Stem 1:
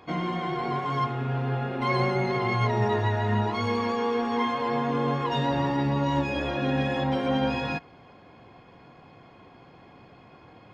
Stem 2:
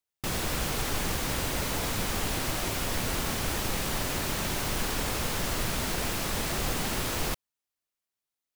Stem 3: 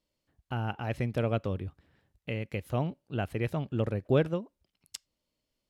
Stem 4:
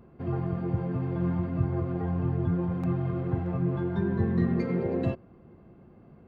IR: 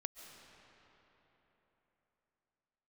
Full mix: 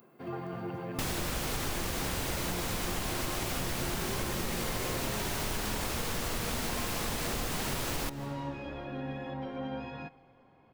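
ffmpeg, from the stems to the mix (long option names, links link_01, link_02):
-filter_complex "[0:a]lowpass=frequency=2400:poles=1,adelay=2300,volume=-13dB,asplit=2[link_01][link_02];[link_02]volume=-12.5dB[link_03];[1:a]adelay=750,volume=0dB,asplit=2[link_04][link_05];[link_05]volume=-5.5dB[link_06];[2:a]volume=-15.5dB[link_07];[3:a]highpass=120,aemphasis=mode=production:type=riaa,volume=-2.5dB,asplit=2[link_08][link_09];[link_09]volume=-7.5dB[link_10];[4:a]atrim=start_sample=2205[link_11];[link_03][link_06][link_10]amix=inputs=3:normalize=0[link_12];[link_12][link_11]afir=irnorm=-1:irlink=0[link_13];[link_01][link_04][link_07][link_08][link_13]amix=inputs=5:normalize=0,acompressor=threshold=-30dB:ratio=6"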